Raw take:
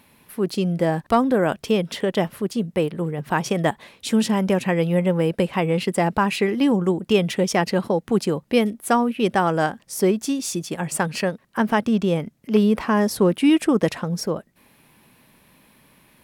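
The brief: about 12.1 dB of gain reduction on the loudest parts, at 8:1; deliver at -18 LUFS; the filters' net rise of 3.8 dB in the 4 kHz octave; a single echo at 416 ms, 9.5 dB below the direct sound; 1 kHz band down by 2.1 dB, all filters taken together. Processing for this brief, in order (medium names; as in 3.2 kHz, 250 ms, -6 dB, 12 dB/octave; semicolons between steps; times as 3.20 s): peaking EQ 1 kHz -3 dB; peaking EQ 4 kHz +5.5 dB; compression 8:1, threshold -26 dBFS; delay 416 ms -9.5 dB; trim +12 dB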